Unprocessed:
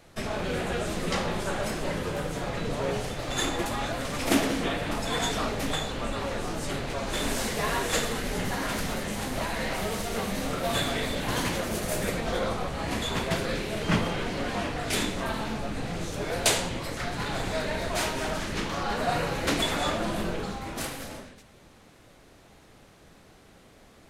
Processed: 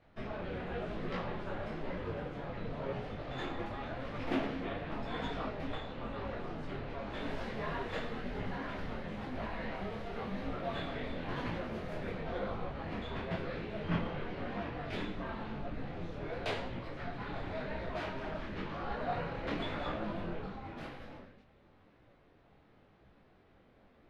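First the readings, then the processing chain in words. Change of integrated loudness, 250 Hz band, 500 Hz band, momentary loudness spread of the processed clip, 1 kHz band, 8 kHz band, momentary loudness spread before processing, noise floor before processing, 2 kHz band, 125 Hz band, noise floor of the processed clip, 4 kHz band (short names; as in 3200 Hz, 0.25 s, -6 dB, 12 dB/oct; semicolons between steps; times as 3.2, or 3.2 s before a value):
-10.5 dB, -8.5 dB, -9.0 dB, 5 LU, -9.5 dB, under -30 dB, 6 LU, -55 dBFS, -11.5 dB, -8.0 dB, -64 dBFS, -16.5 dB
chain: air absorption 340 m; detuned doubles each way 33 cents; gain -4.5 dB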